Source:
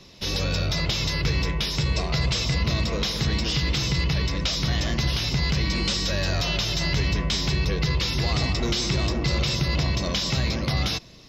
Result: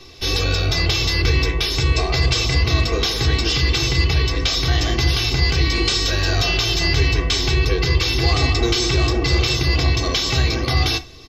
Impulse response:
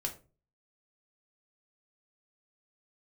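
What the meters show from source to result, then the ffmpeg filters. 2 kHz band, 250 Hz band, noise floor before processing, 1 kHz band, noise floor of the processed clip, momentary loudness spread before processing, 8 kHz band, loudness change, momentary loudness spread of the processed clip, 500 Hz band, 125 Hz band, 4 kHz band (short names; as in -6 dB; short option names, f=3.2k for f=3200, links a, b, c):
+7.5 dB, +3.0 dB, -29 dBFS, +6.5 dB, -24 dBFS, 1 LU, +6.0 dB, +6.0 dB, 2 LU, +7.0 dB, +5.5 dB, +6.0 dB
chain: -filter_complex "[0:a]aecho=1:1:2.6:0.83,asplit=2[a][b];[1:a]atrim=start_sample=2205,afade=t=out:st=0.14:d=0.01,atrim=end_sample=6615[c];[b][c]afir=irnorm=-1:irlink=0,volume=-3dB[d];[a][d]amix=inputs=2:normalize=0"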